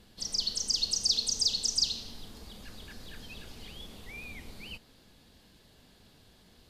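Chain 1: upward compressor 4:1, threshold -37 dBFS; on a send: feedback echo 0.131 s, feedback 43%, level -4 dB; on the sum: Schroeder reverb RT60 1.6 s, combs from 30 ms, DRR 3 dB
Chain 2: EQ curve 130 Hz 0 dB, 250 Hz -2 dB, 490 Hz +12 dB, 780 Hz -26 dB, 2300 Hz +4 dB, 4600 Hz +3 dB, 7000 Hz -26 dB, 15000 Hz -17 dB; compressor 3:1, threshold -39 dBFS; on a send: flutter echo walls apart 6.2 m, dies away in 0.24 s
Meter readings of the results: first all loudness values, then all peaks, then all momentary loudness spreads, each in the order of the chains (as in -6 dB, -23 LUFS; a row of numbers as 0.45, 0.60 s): -26.5, -40.5 LUFS; -12.0, -26.0 dBFS; 19, 20 LU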